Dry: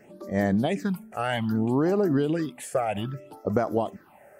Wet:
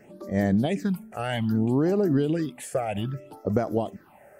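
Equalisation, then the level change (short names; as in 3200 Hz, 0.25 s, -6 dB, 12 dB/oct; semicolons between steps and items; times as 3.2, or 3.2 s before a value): dynamic EQ 1100 Hz, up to -6 dB, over -42 dBFS, Q 1.3; low shelf 150 Hz +4.5 dB; 0.0 dB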